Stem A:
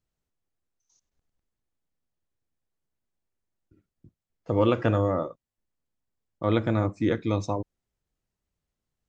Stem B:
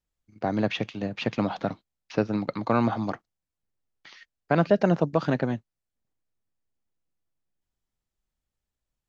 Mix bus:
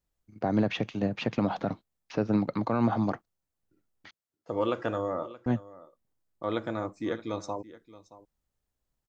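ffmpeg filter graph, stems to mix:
ffmpeg -i stem1.wav -i stem2.wav -filter_complex "[0:a]highpass=frequency=460:poles=1,equalizer=frequency=2400:width_type=o:width=0.76:gain=-5.5,volume=-2.5dB,asplit=2[link_01][link_02];[link_02]volume=-18dB[link_03];[1:a]equalizer=frequency=3900:width=0.42:gain=-6,alimiter=limit=-18.5dB:level=0:latency=1:release=75,volume=2.5dB,asplit=3[link_04][link_05][link_06];[link_04]atrim=end=4.11,asetpts=PTS-STARTPTS,afade=type=out:start_time=4.106:duration=0.004:curve=hsin[link_07];[link_05]atrim=start=4.11:end=5.46,asetpts=PTS-STARTPTS,volume=0[link_08];[link_06]atrim=start=5.46,asetpts=PTS-STARTPTS,afade=type=in:duration=0.004:curve=hsin[link_09];[link_07][link_08][link_09]concat=n=3:v=0:a=1[link_10];[link_03]aecho=0:1:624:1[link_11];[link_01][link_10][link_11]amix=inputs=3:normalize=0" out.wav

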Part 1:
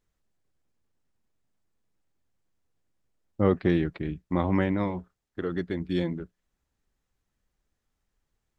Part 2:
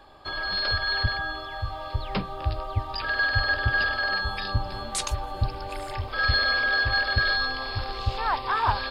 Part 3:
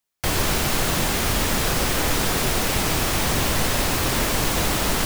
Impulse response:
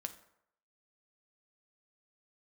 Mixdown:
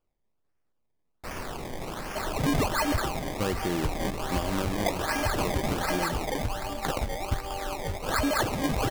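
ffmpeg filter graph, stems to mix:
-filter_complex "[0:a]volume=0dB[link_01];[1:a]firequalizer=gain_entry='entry(890,0);entry(2300,-24);entry(4900,9);entry(7000,-29)':delay=0.05:min_phase=1,acrusher=bits=3:mode=log:mix=0:aa=0.000001,adelay=1900,volume=2.5dB[link_02];[2:a]adelay=1000,volume=-13dB[link_03];[link_01][link_02][link_03]amix=inputs=3:normalize=0,equalizer=frequency=110:width_type=o:width=3:gain=-6,acrusher=samples=22:mix=1:aa=0.000001:lfo=1:lforange=22:lforate=1.3,alimiter=limit=-17.5dB:level=0:latency=1:release=132"

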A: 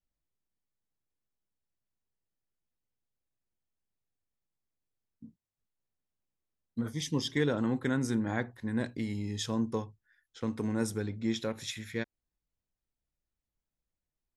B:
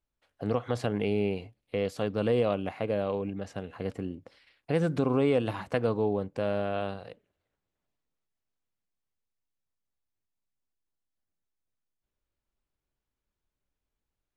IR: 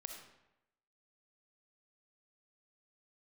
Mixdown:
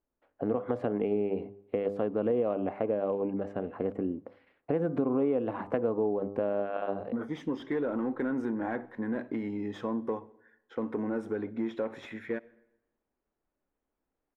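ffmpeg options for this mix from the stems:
-filter_complex "[0:a]acompressor=threshold=-31dB:ratio=2.5,asplit=2[link_01][link_02];[link_02]highpass=frequency=720:poles=1,volume=14dB,asoftclip=type=tanh:threshold=-24dB[link_03];[link_01][link_03]amix=inputs=2:normalize=0,lowpass=frequency=3600:poles=1,volume=-6dB,adelay=350,volume=-7dB,asplit=2[link_04][link_05];[link_05]volume=-11dB[link_06];[1:a]bandreject=frequency=100.2:width_type=h:width=4,bandreject=frequency=200.4:width_type=h:width=4,bandreject=frequency=300.6:width_type=h:width=4,bandreject=frequency=400.8:width_type=h:width=4,bandreject=frequency=501:width_type=h:width=4,bandreject=frequency=601.2:width_type=h:width=4,bandreject=frequency=701.4:width_type=h:width=4,bandreject=frequency=801.6:width_type=h:width=4,bandreject=frequency=901.8:width_type=h:width=4,bandreject=frequency=1002:width_type=h:width=4,bandreject=frequency=1102.2:width_type=h:width=4,bandreject=frequency=1202.4:width_type=h:width=4,bandreject=frequency=1302.6:width_type=h:width=4,volume=-4.5dB,asplit=2[link_07][link_08];[link_08]volume=-20.5dB[link_09];[2:a]atrim=start_sample=2205[link_10];[link_06][link_09]amix=inputs=2:normalize=0[link_11];[link_11][link_10]afir=irnorm=-1:irlink=0[link_12];[link_04][link_07][link_12]amix=inputs=3:normalize=0,firequalizer=gain_entry='entry(120,0);entry(260,12);entry(4500,-17)':delay=0.05:min_phase=1,acompressor=threshold=-27dB:ratio=3"

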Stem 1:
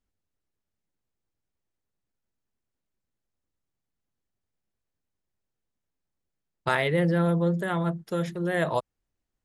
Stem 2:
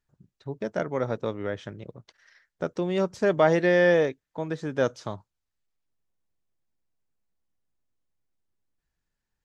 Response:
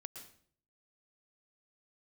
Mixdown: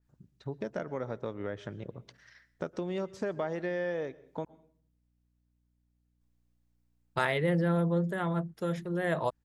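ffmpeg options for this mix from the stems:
-filter_complex "[0:a]adelay=500,volume=-4dB[link_01];[1:a]acompressor=threshold=-33dB:ratio=4,volume=-1.5dB,asplit=3[link_02][link_03][link_04];[link_02]atrim=end=4.45,asetpts=PTS-STARTPTS,afade=type=out:start_time=4.446:duration=0.004:curve=hsin[link_05];[link_03]atrim=start=4.45:end=6.21,asetpts=PTS-STARTPTS,volume=0[link_06];[link_04]atrim=start=6.21,asetpts=PTS-STARTPTS,afade=type=in:duration=0.004:curve=hsin[link_07];[link_05][link_06][link_07]concat=n=3:v=0:a=1,asplit=2[link_08][link_09];[link_09]volume=-8dB[link_10];[2:a]atrim=start_sample=2205[link_11];[link_10][link_11]afir=irnorm=-1:irlink=0[link_12];[link_01][link_08][link_12]amix=inputs=3:normalize=0,aeval=exprs='val(0)+0.000224*(sin(2*PI*60*n/s)+sin(2*PI*2*60*n/s)/2+sin(2*PI*3*60*n/s)/3+sin(2*PI*4*60*n/s)/4+sin(2*PI*5*60*n/s)/5)':channel_layout=same,adynamicequalizer=threshold=0.002:dfrequency=2300:dqfactor=0.7:tfrequency=2300:tqfactor=0.7:attack=5:release=100:ratio=0.375:range=2:mode=cutabove:tftype=highshelf"

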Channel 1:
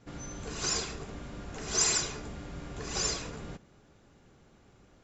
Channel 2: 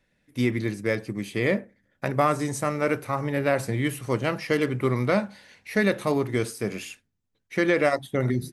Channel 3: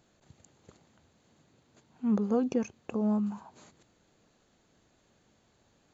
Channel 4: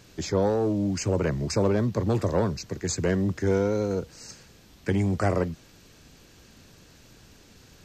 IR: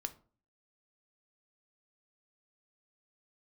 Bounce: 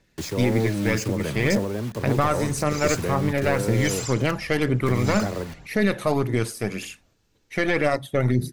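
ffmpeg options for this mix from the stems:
-filter_complex "[0:a]adelay=2100,volume=-6.5dB[link_01];[1:a]aeval=exprs='(tanh(3.98*val(0)+0.5)-tanh(0.5))/3.98':channel_layout=same,volume=3dB,asplit=2[link_02][link_03];[link_03]volume=-15.5dB[link_04];[2:a]adelay=400,volume=-17dB[link_05];[3:a]volume=-1dB,asplit=2[link_06][link_07];[link_07]volume=-14dB[link_08];[link_05][link_06]amix=inputs=2:normalize=0,acrusher=bits=5:mix=0:aa=0.000001,alimiter=limit=-19.5dB:level=0:latency=1:release=447,volume=0dB[link_09];[link_01][link_02]amix=inputs=2:normalize=0,aphaser=in_gain=1:out_gain=1:delay=1.8:decay=0.45:speed=1.9:type=triangular,alimiter=limit=-11.5dB:level=0:latency=1:release=17,volume=0dB[link_10];[4:a]atrim=start_sample=2205[link_11];[link_04][link_08]amix=inputs=2:normalize=0[link_12];[link_12][link_11]afir=irnorm=-1:irlink=0[link_13];[link_09][link_10][link_13]amix=inputs=3:normalize=0"

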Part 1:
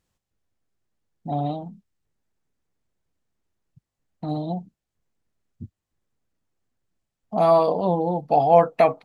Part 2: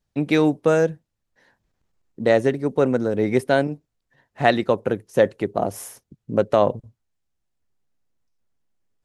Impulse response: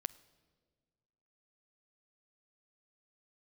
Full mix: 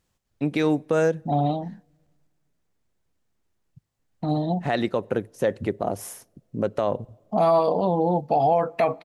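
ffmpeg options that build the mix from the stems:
-filter_complex "[0:a]volume=2dB,asplit=2[link_01][link_02];[link_02]volume=-14dB[link_03];[1:a]adelay=250,volume=-3dB,asplit=3[link_04][link_05][link_06];[link_04]atrim=end=2.27,asetpts=PTS-STARTPTS,afade=type=out:start_time=2.266:duration=0.004:curve=hsin[link_07];[link_05]atrim=start=2.27:end=4.11,asetpts=PTS-STARTPTS,volume=0[link_08];[link_06]atrim=start=4.11,asetpts=PTS-STARTPTS,afade=type=in:duration=0.004:curve=hsin[link_09];[link_07][link_08][link_09]concat=n=3:v=0:a=1,asplit=2[link_10][link_11];[link_11]volume=-12.5dB[link_12];[2:a]atrim=start_sample=2205[link_13];[link_03][link_12]amix=inputs=2:normalize=0[link_14];[link_14][link_13]afir=irnorm=-1:irlink=0[link_15];[link_01][link_10][link_15]amix=inputs=3:normalize=0,alimiter=limit=-12dB:level=0:latency=1:release=85"

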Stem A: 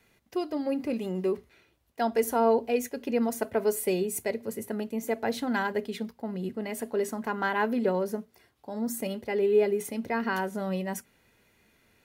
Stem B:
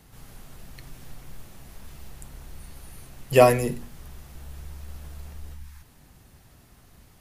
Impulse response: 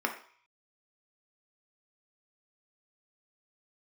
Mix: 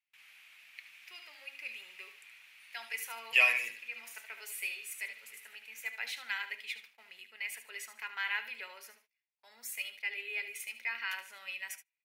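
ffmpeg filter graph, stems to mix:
-filter_complex "[0:a]adelay=750,volume=-6.5dB,asplit=3[link_01][link_02][link_03];[link_02]volume=-13dB[link_04];[link_03]volume=-10dB[link_05];[1:a]bass=frequency=250:gain=8,treble=frequency=4000:gain=-12,volume=-4dB,asplit=3[link_06][link_07][link_08];[link_07]volume=-11.5dB[link_09];[link_08]apad=whole_len=564329[link_10];[link_01][link_10]sidechaincompress=threshold=-35dB:ratio=8:attack=16:release=704[link_11];[2:a]atrim=start_sample=2205[link_12];[link_04][link_12]afir=irnorm=-1:irlink=0[link_13];[link_05][link_09]amix=inputs=2:normalize=0,aecho=0:1:74|148|222|296:1|0.27|0.0729|0.0197[link_14];[link_11][link_06][link_13][link_14]amix=inputs=4:normalize=0,agate=range=-28dB:threshold=-45dB:ratio=16:detection=peak,highpass=frequency=2400:width_type=q:width=4.7"

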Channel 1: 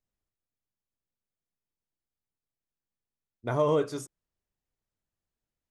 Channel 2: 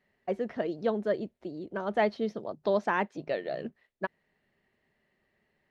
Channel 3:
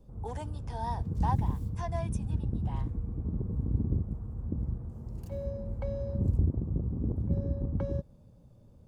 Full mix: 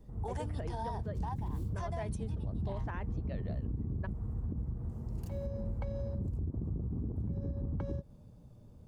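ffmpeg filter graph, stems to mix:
ffmpeg -i stem1.wav -i stem2.wav -i stem3.wav -filter_complex "[1:a]volume=-10.5dB[link_01];[2:a]bandreject=frequency=540:width=12,volume=1.5dB[link_02];[link_01][link_02]amix=inputs=2:normalize=0,alimiter=level_in=1dB:limit=-24dB:level=0:latency=1:release=123,volume=-1dB,volume=0dB,alimiter=level_in=5dB:limit=-24dB:level=0:latency=1:release=53,volume=-5dB" out.wav

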